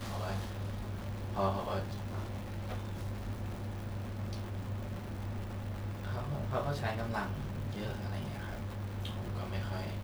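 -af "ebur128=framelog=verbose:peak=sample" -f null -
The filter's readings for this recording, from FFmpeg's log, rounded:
Integrated loudness:
  I:         -38.6 LUFS
  Threshold: -48.6 LUFS
Loudness range:
  LRA:         2.7 LU
  Threshold: -58.7 LUFS
  LRA low:   -40.5 LUFS
  LRA high:  -37.8 LUFS
Sample peak:
  Peak:      -19.6 dBFS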